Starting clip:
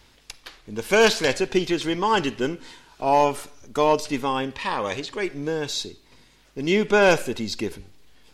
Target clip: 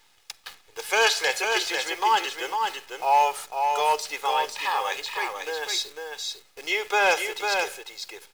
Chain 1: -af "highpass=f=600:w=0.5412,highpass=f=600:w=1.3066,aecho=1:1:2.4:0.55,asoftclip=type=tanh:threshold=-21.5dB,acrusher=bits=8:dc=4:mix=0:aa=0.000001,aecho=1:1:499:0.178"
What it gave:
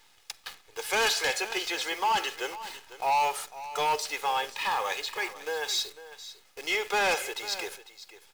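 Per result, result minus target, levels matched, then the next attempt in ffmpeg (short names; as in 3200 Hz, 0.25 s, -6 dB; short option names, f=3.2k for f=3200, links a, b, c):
soft clip: distortion +12 dB; echo-to-direct -10 dB
-af "highpass=f=600:w=0.5412,highpass=f=600:w=1.3066,aecho=1:1:2.4:0.55,asoftclip=type=tanh:threshold=-10.5dB,acrusher=bits=8:dc=4:mix=0:aa=0.000001,aecho=1:1:499:0.178"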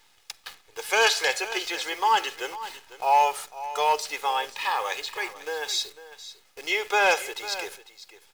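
echo-to-direct -10 dB
-af "highpass=f=600:w=0.5412,highpass=f=600:w=1.3066,aecho=1:1:2.4:0.55,asoftclip=type=tanh:threshold=-10.5dB,acrusher=bits=8:dc=4:mix=0:aa=0.000001,aecho=1:1:499:0.562"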